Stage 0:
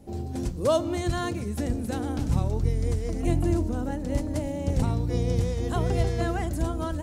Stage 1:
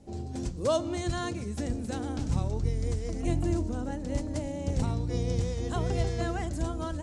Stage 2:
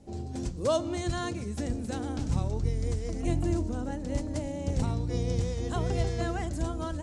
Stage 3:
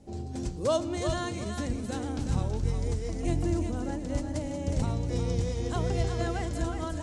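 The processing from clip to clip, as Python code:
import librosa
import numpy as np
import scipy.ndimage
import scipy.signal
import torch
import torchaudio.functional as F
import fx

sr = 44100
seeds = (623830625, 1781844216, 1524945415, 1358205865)

y1 = scipy.signal.sosfilt(scipy.signal.butter(4, 8200.0, 'lowpass', fs=sr, output='sos'), x)
y1 = fx.high_shelf(y1, sr, hz=5300.0, db=7.0)
y1 = y1 * 10.0 ** (-4.0 / 20.0)
y2 = y1
y3 = fx.echo_thinned(y2, sr, ms=364, feedback_pct=32, hz=420.0, wet_db=-6.0)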